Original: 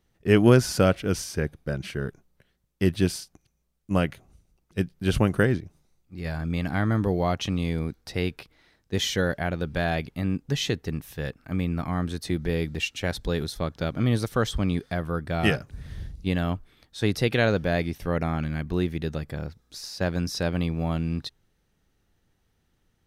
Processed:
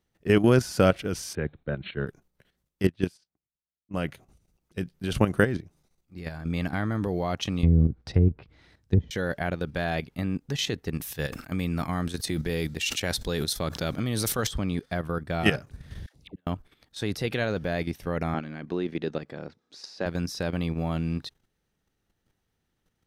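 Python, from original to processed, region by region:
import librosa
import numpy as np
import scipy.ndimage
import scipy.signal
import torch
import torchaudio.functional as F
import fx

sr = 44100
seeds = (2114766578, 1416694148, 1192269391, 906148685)

y = fx.chain(x, sr, fx.brickwall_lowpass(high_hz=4300.0),
    fx.band_widen(depth_pct=40), at=(1.35, 2.07))
y = fx.chain(y, sr, fx.highpass(hz=44.0, slope=6),
    fx.env_lowpass(base_hz=1000.0, full_db=-19.0),
    fx.upward_expand(threshold_db=-33.0, expansion=2.5), at=(2.87, 3.97))
y = fx.chain(y, sr, fx.env_lowpass_down(base_hz=410.0, full_db=-23.5),
    fx.peak_eq(hz=78.0, db=14.5, octaves=2.3), at=(7.63, 9.11))
y = fx.chain(y, sr, fx.high_shelf(hz=3500.0, db=8.5),
    fx.sustainer(db_per_s=75.0), at=(10.93, 14.47))
y = fx.chain(y, sr, fx.highpass(hz=280.0, slope=6),
    fx.gate_flip(shuts_db=-25.0, range_db=-41),
    fx.dispersion(late='lows', ms=89.0, hz=750.0), at=(16.06, 16.47))
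y = fx.chain(y, sr, fx.bandpass_edges(low_hz=290.0, high_hz=5200.0),
    fx.low_shelf(hz=470.0, db=7.5), at=(18.34, 20.06))
y = fx.low_shelf(y, sr, hz=74.0, db=-6.0)
y = fx.level_steps(y, sr, step_db=10)
y = y * librosa.db_to_amplitude(2.5)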